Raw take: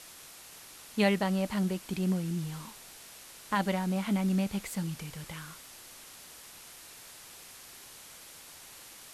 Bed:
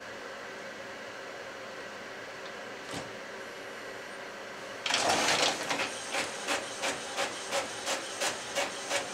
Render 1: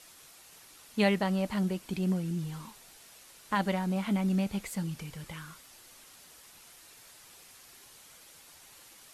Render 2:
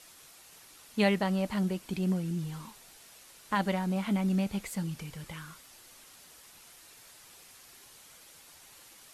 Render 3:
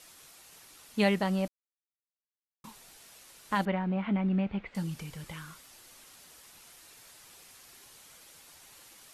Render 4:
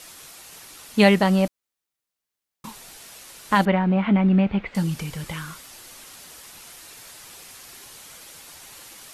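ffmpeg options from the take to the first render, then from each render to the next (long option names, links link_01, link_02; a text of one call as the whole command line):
ffmpeg -i in.wav -af "afftdn=noise_reduction=6:noise_floor=-51" out.wav
ffmpeg -i in.wav -af anull out.wav
ffmpeg -i in.wav -filter_complex "[0:a]asettb=1/sr,asplit=3[link_01][link_02][link_03];[link_01]atrim=end=3.654[link_04];[link_02]atrim=start=3.65:end=4.75,asetpts=PTS-STARTPTS,afade=type=in:duration=0.004:curve=qsin,afade=type=out:start_time=1.096:duration=0.004:curve=qsin,lowpass=frequency=2800:width=0.5412,lowpass=frequency=2800:width=1.3066[link_05];[link_03]atrim=start=4.746[link_06];[link_04][link_05]acrossfade=duration=0.004:curve1=hsin:curve2=qsin[link_07];[link_07][link_06]acrossfade=duration=0.004:curve1=qsin:curve2=hsin,asplit=3[link_08][link_09][link_10];[link_08]atrim=end=1.48,asetpts=PTS-STARTPTS,afade=type=out:start_time=1.476:duration=0.004:curve=hsin[link_11];[link_09]atrim=start=1.48:end=2.64,asetpts=PTS-STARTPTS,volume=0[link_12];[link_10]atrim=start=2.64,asetpts=PTS-STARTPTS,afade=type=in:duration=0.004:curve=hsin[link_13];[link_11][link_12][link_13]concat=n=3:v=0:a=1" out.wav
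ffmpeg -i in.wav -af "volume=10.5dB" out.wav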